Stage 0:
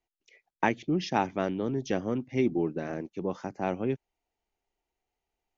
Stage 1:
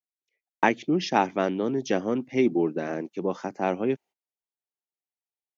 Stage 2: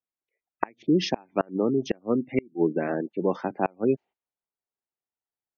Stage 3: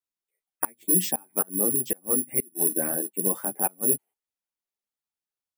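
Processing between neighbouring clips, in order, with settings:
HPF 200 Hz 12 dB/oct; gate -53 dBFS, range -25 dB; gain +5 dB
low-pass opened by the level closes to 1500 Hz, open at -18 dBFS; spectral gate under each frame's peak -25 dB strong; flipped gate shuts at -13 dBFS, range -32 dB; gain +3 dB
careless resampling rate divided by 4×, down none, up zero stuff; ensemble effect; gain -2.5 dB

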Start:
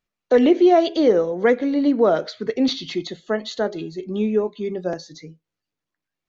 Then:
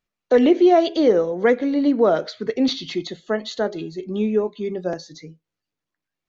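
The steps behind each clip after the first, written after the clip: nothing audible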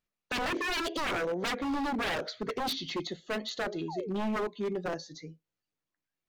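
wavefolder -21 dBFS; painted sound fall, 3.88–4.09, 390–1000 Hz -34 dBFS; gain -5.5 dB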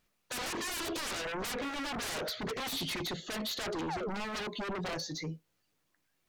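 in parallel at -4 dB: sine folder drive 13 dB, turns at -24 dBFS; on the sum: limiter -30 dBFS, peak gain reduction 8 dB; gain -2.5 dB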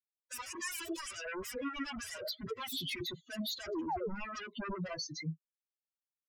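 per-bin expansion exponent 3; gain +4.5 dB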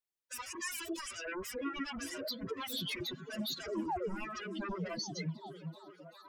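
delay with a stepping band-pass 0.383 s, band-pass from 200 Hz, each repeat 0.7 oct, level -4.5 dB

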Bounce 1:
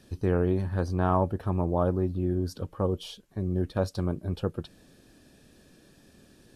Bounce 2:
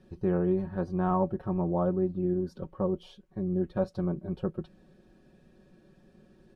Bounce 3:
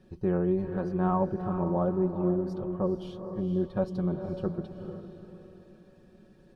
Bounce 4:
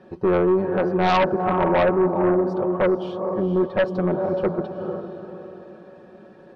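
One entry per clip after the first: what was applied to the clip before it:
LPF 1000 Hz 6 dB/oct; comb 5.4 ms, depth 74%; gain -2.5 dB
diffused feedback echo 0.455 s, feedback 40%, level -8 dB
band-pass 840 Hz, Q 0.88; in parallel at -8 dB: sine folder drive 12 dB, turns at -17.5 dBFS; on the sum: gain +7 dB

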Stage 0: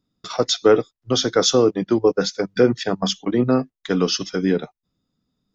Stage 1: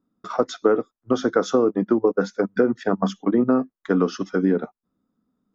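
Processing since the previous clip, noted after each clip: EQ curve 150 Hz 0 dB, 210 Hz +12 dB, 370 Hz +9 dB, 800 Hz +8 dB, 1300 Hz +11 dB, 2500 Hz -4 dB, 4600 Hz -10 dB, 7100 Hz -5 dB; compressor, threshold -7 dBFS, peak gain reduction 7.5 dB; gain -7 dB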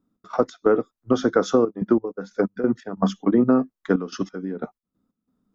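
step gate "x.x.xxxxxx.x.." 91 bpm -12 dB; low shelf 140 Hz +6.5 dB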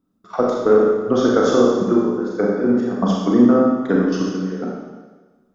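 reverb RT60 1.3 s, pre-delay 29 ms, DRR -3.5 dB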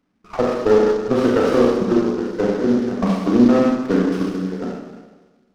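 CVSD 32 kbps; running maximum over 9 samples

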